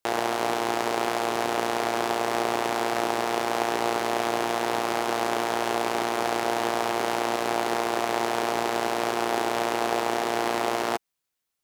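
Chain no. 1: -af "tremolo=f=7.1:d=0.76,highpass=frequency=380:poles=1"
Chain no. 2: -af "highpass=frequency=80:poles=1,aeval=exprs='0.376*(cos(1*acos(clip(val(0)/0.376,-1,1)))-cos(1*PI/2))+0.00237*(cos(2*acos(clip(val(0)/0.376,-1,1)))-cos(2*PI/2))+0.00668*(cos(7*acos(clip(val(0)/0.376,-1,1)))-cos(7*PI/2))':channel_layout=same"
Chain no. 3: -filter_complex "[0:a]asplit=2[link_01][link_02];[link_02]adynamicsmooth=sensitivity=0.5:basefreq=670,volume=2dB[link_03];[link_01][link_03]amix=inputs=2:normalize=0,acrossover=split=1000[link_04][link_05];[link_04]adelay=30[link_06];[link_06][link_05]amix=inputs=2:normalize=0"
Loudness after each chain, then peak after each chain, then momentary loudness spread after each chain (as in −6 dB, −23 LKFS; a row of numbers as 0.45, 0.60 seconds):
−30.5, −26.5, −22.5 LKFS; −9.5, −9.0, −5.5 dBFS; 1, 1, 1 LU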